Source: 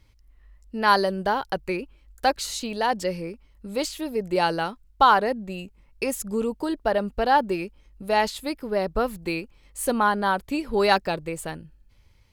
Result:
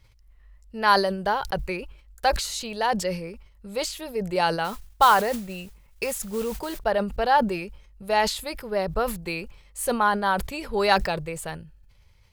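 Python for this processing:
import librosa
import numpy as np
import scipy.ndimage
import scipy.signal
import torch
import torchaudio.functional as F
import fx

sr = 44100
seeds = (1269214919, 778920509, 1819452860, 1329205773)

y = fx.mod_noise(x, sr, seeds[0], snr_db=19, at=(4.64, 6.79))
y = fx.peak_eq(y, sr, hz=280.0, db=-13.0, octaves=0.5)
y = fx.sustainer(y, sr, db_per_s=89.0)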